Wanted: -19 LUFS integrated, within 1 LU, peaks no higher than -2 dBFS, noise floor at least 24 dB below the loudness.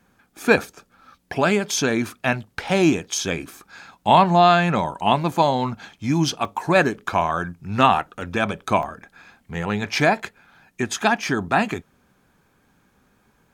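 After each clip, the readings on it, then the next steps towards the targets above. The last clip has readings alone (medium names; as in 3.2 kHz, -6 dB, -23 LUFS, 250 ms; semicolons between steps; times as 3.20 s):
dropouts 4; longest dropout 1.1 ms; loudness -21.0 LUFS; peak level -1.5 dBFS; loudness target -19.0 LUFS
-> interpolate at 0.67/6.45/8.21/8.83 s, 1.1 ms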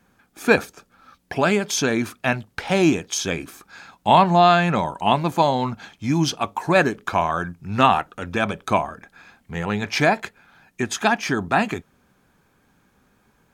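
dropouts 0; loudness -21.0 LUFS; peak level -1.5 dBFS; loudness target -19.0 LUFS
-> trim +2 dB; peak limiter -2 dBFS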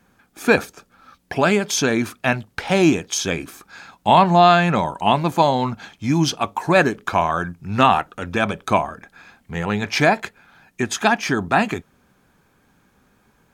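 loudness -19.0 LUFS; peak level -2.0 dBFS; noise floor -61 dBFS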